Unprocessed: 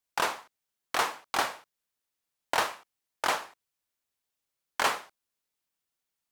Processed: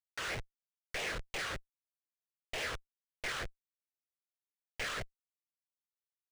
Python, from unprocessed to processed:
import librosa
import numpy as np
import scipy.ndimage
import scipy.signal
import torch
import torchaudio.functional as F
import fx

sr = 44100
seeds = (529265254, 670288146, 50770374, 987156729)

y = fx.phaser_stages(x, sr, stages=8, low_hz=620.0, high_hz=1500.0, hz=3.2, feedback_pct=25)
y = fx.schmitt(y, sr, flips_db=-45.5)
y = fx.graphic_eq(y, sr, hz=(250, 500, 1000, 2000), db=(-10, 4, -9, 6))
y = np.interp(np.arange(len(y)), np.arange(len(y))[::3], y[::3])
y = y * librosa.db_to_amplitude(3.0)